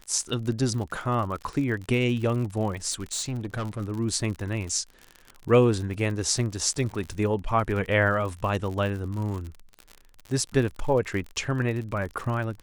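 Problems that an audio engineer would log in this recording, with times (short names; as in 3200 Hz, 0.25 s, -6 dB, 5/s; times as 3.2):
crackle 53/s -32 dBFS
2.9–3.81 clipped -26 dBFS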